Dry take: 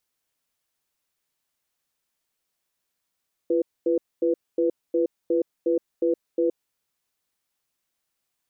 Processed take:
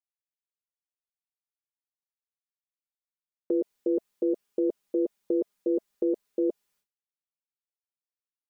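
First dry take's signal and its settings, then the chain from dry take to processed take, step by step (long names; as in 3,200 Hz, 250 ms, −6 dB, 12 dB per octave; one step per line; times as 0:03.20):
tone pair in a cadence 341 Hz, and 495 Hz, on 0.12 s, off 0.24 s, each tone −21.5 dBFS 3.16 s
notch filter 670 Hz, Q 12
downward expander −60 dBFS
comb filter 4.9 ms, depth 69%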